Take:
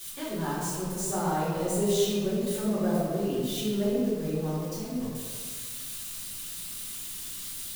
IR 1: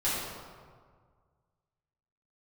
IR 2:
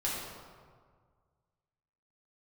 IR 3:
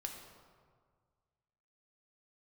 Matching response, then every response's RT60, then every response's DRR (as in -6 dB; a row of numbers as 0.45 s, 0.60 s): 1; 1.8 s, 1.8 s, 1.8 s; -11.5 dB, -7.0 dB, 2.0 dB